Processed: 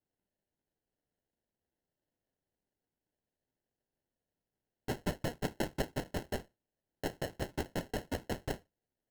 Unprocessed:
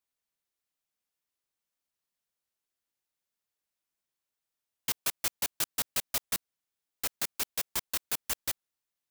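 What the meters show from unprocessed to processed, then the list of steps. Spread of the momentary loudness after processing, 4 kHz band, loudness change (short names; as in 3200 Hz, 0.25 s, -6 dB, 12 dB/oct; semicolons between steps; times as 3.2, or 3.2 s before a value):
5 LU, -10.0 dB, -7.0 dB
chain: resonator bank D2 fifth, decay 0.2 s; sample-and-hold 37×; gain +5 dB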